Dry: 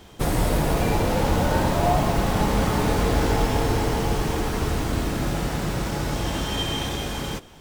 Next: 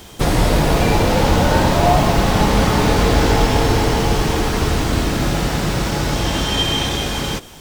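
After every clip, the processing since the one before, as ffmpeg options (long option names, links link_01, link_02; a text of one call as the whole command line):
ffmpeg -i in.wav -filter_complex "[0:a]acrossover=split=5900[link_01][link_02];[link_02]acompressor=threshold=-50dB:ratio=4:attack=1:release=60[link_03];[link_01][link_03]amix=inputs=2:normalize=0,highshelf=frequency=4000:gain=9,volume=6.5dB" out.wav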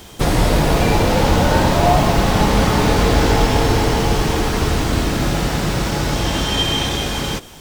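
ffmpeg -i in.wav -af anull out.wav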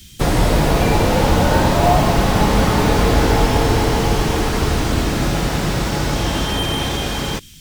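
ffmpeg -i in.wav -filter_complex "[0:a]acrossover=split=240|2100[link_01][link_02][link_03];[link_02]acrusher=bits=4:mix=0:aa=0.5[link_04];[link_03]asoftclip=type=hard:threshold=-26dB[link_05];[link_01][link_04][link_05]amix=inputs=3:normalize=0" out.wav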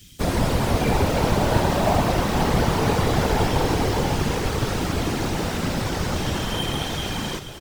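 ffmpeg -i in.wav -af "aecho=1:1:471|942|1413|1884|2355|2826:0.266|0.141|0.0747|0.0396|0.021|0.0111,afftfilt=real='hypot(re,im)*cos(2*PI*random(0))':imag='hypot(re,im)*sin(2*PI*random(1))':win_size=512:overlap=0.75" out.wav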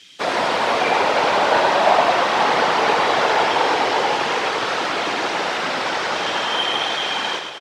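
ffmpeg -i in.wav -filter_complex "[0:a]highpass=660,lowpass=3900,asplit=2[link_01][link_02];[link_02]aecho=0:1:105:0.447[link_03];[link_01][link_03]amix=inputs=2:normalize=0,volume=9dB" out.wav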